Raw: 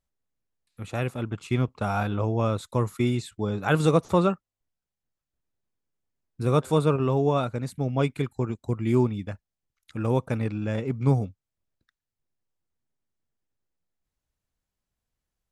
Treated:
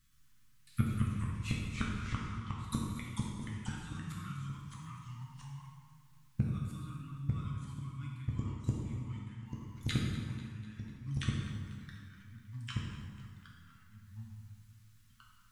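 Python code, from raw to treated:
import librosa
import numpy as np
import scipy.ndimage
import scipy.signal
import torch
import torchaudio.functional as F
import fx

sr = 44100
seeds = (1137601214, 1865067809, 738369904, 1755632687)

p1 = scipy.signal.sosfilt(scipy.signal.cheby2(4, 40, [380.0, 830.0], 'bandstop', fs=sr, output='sos'), x)
p2 = p1 + 0.39 * np.pad(p1, (int(6.3 * sr / 1000.0), 0))[:len(p1)]
p3 = fx.gate_flip(p2, sr, shuts_db=-30.0, range_db=-37)
p4 = fx.echo_pitch(p3, sr, ms=111, semitones=-2, count=2, db_per_echo=-3.0)
p5 = p4 + fx.echo_feedback(p4, sr, ms=247, feedback_pct=55, wet_db=-16, dry=0)
p6 = fx.rev_plate(p5, sr, seeds[0], rt60_s=1.5, hf_ratio=0.75, predelay_ms=0, drr_db=-3.0)
y = p6 * 10.0 ** (11.5 / 20.0)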